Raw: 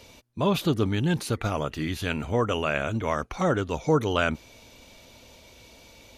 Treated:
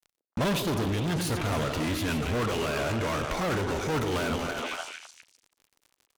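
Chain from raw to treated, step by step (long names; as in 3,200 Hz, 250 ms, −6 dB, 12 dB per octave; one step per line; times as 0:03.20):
feedback delay that plays each chunk backwards 129 ms, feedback 44%, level −11 dB
0:02.58–0:03.19: high-pass filter 66 Hz 24 dB per octave
fuzz pedal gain 34 dB, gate −42 dBFS
noise gate −54 dBFS, range −9 dB
echo through a band-pass that steps 149 ms, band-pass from 370 Hz, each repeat 1.4 octaves, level −3 dB
brickwall limiter −20.5 dBFS, peak gain reduction 13.5 dB
level −2.5 dB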